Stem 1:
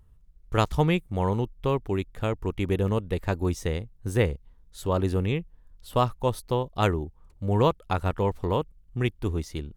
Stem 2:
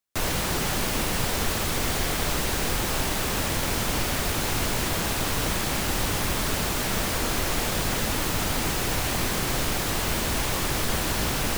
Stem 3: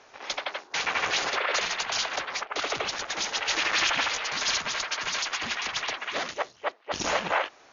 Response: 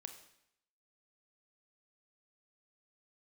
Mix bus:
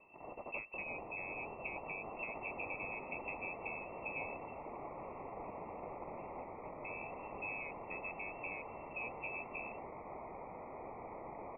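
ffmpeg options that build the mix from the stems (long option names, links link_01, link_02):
-filter_complex "[0:a]acompressor=threshold=-30dB:ratio=12,volume=-3dB,asplit=3[link_01][link_02][link_03];[link_01]atrim=end=4.57,asetpts=PTS-STARTPTS,afade=type=out:start_time=4.566:duration=0.004:curve=hsin[link_04];[link_02]atrim=start=4.57:end=6.84,asetpts=PTS-STARTPTS,volume=0[link_05];[link_03]atrim=start=6.84,asetpts=PTS-STARTPTS,afade=type=in:duration=0.004:curve=hsin[link_06];[link_04][link_05][link_06]concat=n=3:v=0:a=1[link_07];[1:a]adelay=2200,volume=-3dB[link_08];[2:a]aeval=exprs='(mod(22.4*val(0)+1,2)-1)/22.4':channel_layout=same,volume=-3dB,asplit=2[link_09][link_10];[link_10]volume=-7dB[link_11];[link_08][link_09]amix=inputs=2:normalize=0,highpass=900,acompressor=threshold=-34dB:ratio=4,volume=0dB[link_12];[3:a]atrim=start_sample=2205[link_13];[link_11][link_13]afir=irnorm=-1:irlink=0[link_14];[link_07][link_12][link_14]amix=inputs=3:normalize=0,lowshelf=frequency=480:gain=-3,lowpass=frequency=2300:width_type=q:width=0.5098,lowpass=frequency=2300:width_type=q:width=0.6013,lowpass=frequency=2300:width_type=q:width=0.9,lowpass=frequency=2300:width_type=q:width=2.563,afreqshift=-2700,asuperstop=centerf=1600:order=4:qfactor=0.85"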